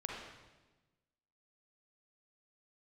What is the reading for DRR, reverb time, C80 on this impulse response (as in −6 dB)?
−2.0 dB, 1.2 s, 2.5 dB